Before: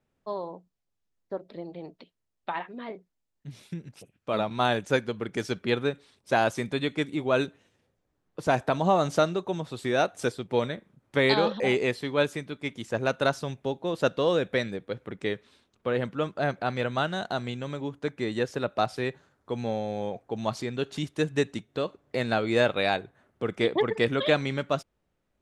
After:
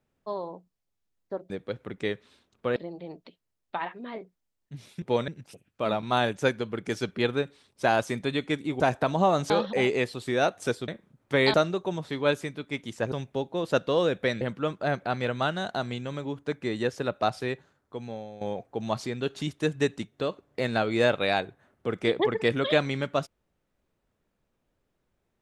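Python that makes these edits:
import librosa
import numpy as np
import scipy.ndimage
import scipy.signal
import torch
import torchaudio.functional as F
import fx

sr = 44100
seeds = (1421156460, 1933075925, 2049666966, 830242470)

y = fx.edit(x, sr, fx.cut(start_s=7.28, length_s=1.18),
    fx.swap(start_s=9.16, length_s=0.55, other_s=11.37, other_length_s=0.64),
    fx.move(start_s=10.45, length_s=0.26, to_s=3.76),
    fx.cut(start_s=13.04, length_s=0.38),
    fx.move(start_s=14.71, length_s=1.26, to_s=1.5),
    fx.fade_out_to(start_s=18.92, length_s=1.05, floor_db=-13.5), tone=tone)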